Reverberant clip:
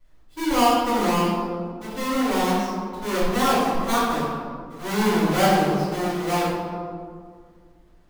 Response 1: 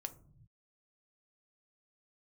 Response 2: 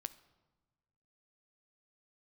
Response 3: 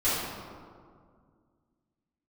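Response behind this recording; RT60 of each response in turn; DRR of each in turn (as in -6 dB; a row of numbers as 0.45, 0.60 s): 3; not exponential, 1.3 s, 2.0 s; 8.0, 13.0, -14.5 dB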